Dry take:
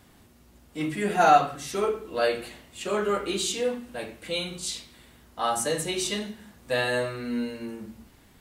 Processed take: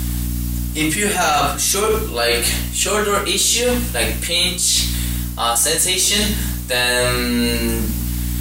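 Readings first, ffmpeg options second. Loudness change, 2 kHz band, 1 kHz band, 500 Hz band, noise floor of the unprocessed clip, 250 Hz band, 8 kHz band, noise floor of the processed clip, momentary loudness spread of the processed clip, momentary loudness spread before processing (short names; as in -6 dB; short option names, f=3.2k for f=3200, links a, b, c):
+10.5 dB, +11.5 dB, +3.5 dB, +6.0 dB, -57 dBFS, +10.0 dB, +18.0 dB, -25 dBFS, 9 LU, 17 LU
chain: -af "crystalizer=i=7:c=0,apsyclip=15dB,aeval=exprs='val(0)+0.1*(sin(2*PI*60*n/s)+sin(2*PI*2*60*n/s)/2+sin(2*PI*3*60*n/s)/3+sin(2*PI*4*60*n/s)/4+sin(2*PI*5*60*n/s)/5)':c=same,areverse,acompressor=threshold=-14dB:ratio=10,areverse"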